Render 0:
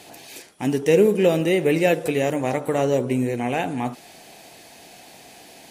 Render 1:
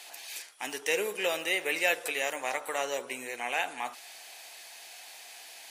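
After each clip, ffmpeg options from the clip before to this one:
-af "highpass=1100"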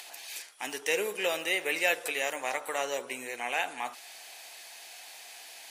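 -af "acompressor=mode=upward:threshold=0.00562:ratio=2.5"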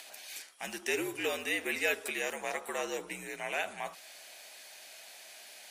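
-af "afreqshift=-72,volume=0.668"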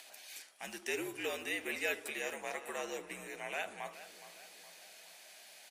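-filter_complex "[0:a]asplit=2[s0][s1];[s1]adelay=417,lowpass=f=3900:p=1,volume=0.2,asplit=2[s2][s3];[s3]adelay=417,lowpass=f=3900:p=1,volume=0.54,asplit=2[s4][s5];[s5]adelay=417,lowpass=f=3900:p=1,volume=0.54,asplit=2[s6][s7];[s7]adelay=417,lowpass=f=3900:p=1,volume=0.54,asplit=2[s8][s9];[s9]adelay=417,lowpass=f=3900:p=1,volume=0.54[s10];[s0][s2][s4][s6][s8][s10]amix=inputs=6:normalize=0,volume=0.562"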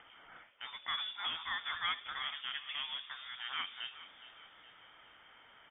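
-af "lowpass=f=3200:t=q:w=0.5098,lowpass=f=3200:t=q:w=0.6013,lowpass=f=3200:t=q:w=0.9,lowpass=f=3200:t=q:w=2.563,afreqshift=-3800"

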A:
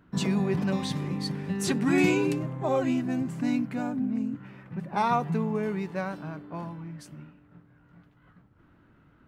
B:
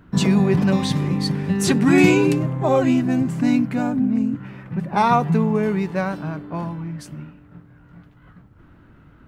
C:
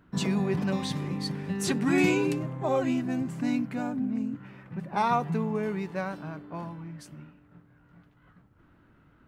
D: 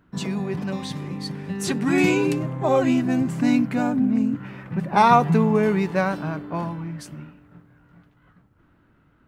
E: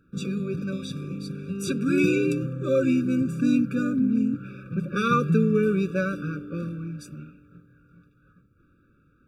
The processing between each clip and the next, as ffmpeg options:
-af "lowshelf=f=100:g=7.5,volume=2.51"
-af "lowshelf=f=190:g=-5.5,volume=0.398"
-af "dynaudnorm=f=220:g=21:m=3.98"
-af "afftfilt=real='re*eq(mod(floor(b*sr/1024/560),2),0)':imag='im*eq(mod(floor(b*sr/1024/560),2),0)':win_size=1024:overlap=0.75,volume=0.794"

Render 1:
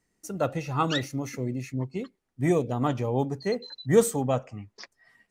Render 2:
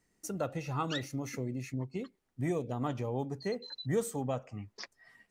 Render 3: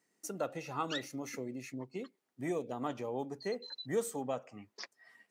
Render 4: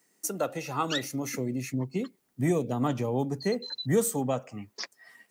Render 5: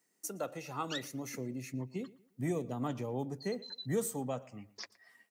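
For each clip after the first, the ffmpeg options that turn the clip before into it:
-af "acompressor=threshold=0.0141:ratio=2"
-af "highpass=250,volume=0.891"
-filter_complex "[0:a]highshelf=f=7700:g=10.5,acrossover=split=200[s0][s1];[s0]dynaudnorm=f=290:g=9:m=4.22[s2];[s2][s1]amix=inputs=2:normalize=0,volume=2.11"
-filter_complex "[0:a]asplit=2[s0][s1];[s1]adelay=117,lowpass=f=4000:p=1,volume=0.1,asplit=2[s2][s3];[s3]adelay=117,lowpass=f=4000:p=1,volume=0.34,asplit=2[s4][s5];[s5]adelay=117,lowpass=f=4000:p=1,volume=0.34[s6];[s0][s2][s4][s6]amix=inputs=4:normalize=0,volume=0.376"

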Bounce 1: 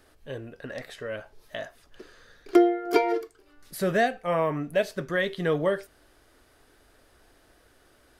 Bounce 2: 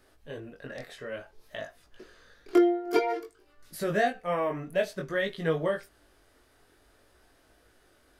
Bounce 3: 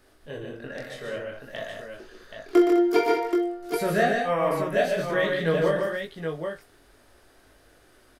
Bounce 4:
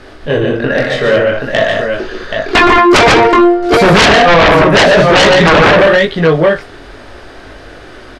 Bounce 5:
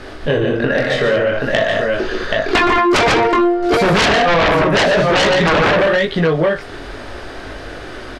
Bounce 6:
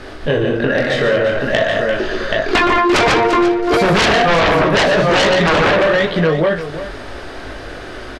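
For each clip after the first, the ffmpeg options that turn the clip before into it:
-af "flanger=delay=18.5:depth=4.1:speed=0.54"
-af "aecho=1:1:42|119|148|206|778:0.398|0.422|0.562|0.299|0.501,volume=1.33"
-af "lowpass=4300,aeval=exprs='0.398*sin(PI/2*6.31*val(0)/0.398)':c=same,volume=1.78"
-af "acompressor=threshold=0.158:ratio=4,volume=1.33"
-af "aecho=1:1:344:0.266"

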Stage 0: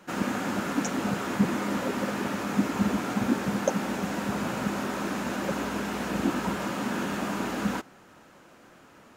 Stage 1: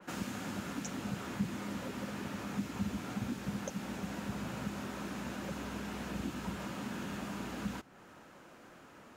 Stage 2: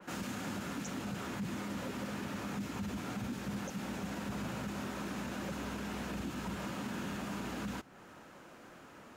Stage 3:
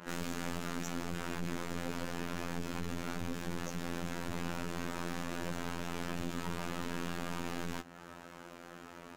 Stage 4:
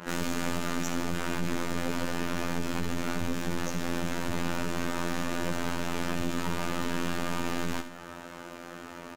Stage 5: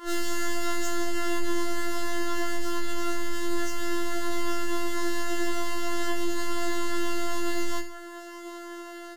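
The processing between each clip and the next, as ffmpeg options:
-filter_complex "[0:a]acrossover=split=150|3000[s0][s1][s2];[s1]acompressor=threshold=0.01:ratio=5[s3];[s0][s3][s2]amix=inputs=3:normalize=0,adynamicequalizer=threshold=0.00112:dfrequency=3300:dqfactor=0.7:tfrequency=3300:tqfactor=0.7:attack=5:release=100:ratio=0.375:range=4:mode=cutabove:tftype=highshelf,volume=0.794"
-af "alimiter=level_in=2.66:limit=0.0631:level=0:latency=1:release=17,volume=0.376,volume=1.19"
-af "aeval=exprs='clip(val(0),-1,0.00251)':c=same,afftfilt=real='hypot(re,im)*cos(PI*b)':imag='0':win_size=2048:overlap=0.75,volume=2.37"
-af "aecho=1:1:73|146|219|292:0.282|0.121|0.0521|0.0224,volume=2.24"
-af "asuperstop=centerf=2300:order=20:qfactor=6,afftfilt=real='re*4*eq(mod(b,16),0)':imag='im*4*eq(mod(b,16),0)':win_size=2048:overlap=0.75"

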